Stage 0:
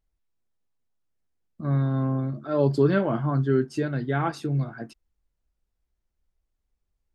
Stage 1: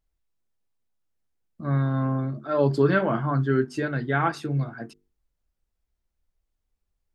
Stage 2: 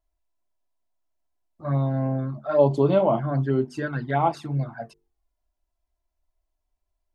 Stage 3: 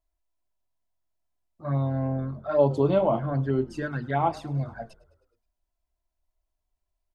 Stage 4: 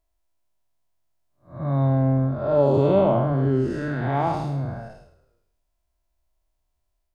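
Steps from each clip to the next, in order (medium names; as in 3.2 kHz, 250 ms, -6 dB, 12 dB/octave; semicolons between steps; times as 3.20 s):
dynamic bell 1.6 kHz, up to +6 dB, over -42 dBFS, Q 0.83; hum notches 50/100/150/200/250/300/350/400/450 Hz
touch-sensitive flanger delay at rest 3 ms, full sweep at -19 dBFS; high-order bell 760 Hz +9 dB 1.1 oct
frequency-shifting echo 105 ms, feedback 63%, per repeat -44 Hz, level -22 dB; trim -2.5 dB
spectral blur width 222 ms; on a send at -13 dB: reverberation RT60 0.85 s, pre-delay 4 ms; on the sum: trim +7 dB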